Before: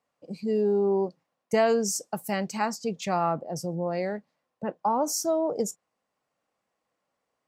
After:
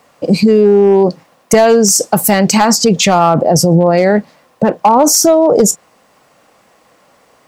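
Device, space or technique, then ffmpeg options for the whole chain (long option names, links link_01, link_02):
loud club master: -af "acompressor=threshold=-27dB:ratio=2.5,asoftclip=type=hard:threshold=-22.5dB,alimiter=level_in=31.5dB:limit=-1dB:release=50:level=0:latency=1,volume=-1dB"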